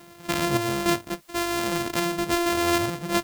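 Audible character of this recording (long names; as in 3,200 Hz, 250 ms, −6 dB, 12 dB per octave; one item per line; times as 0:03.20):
a buzz of ramps at a fixed pitch in blocks of 128 samples
sample-and-hold tremolo 3.5 Hz
a quantiser's noise floor 10 bits, dither triangular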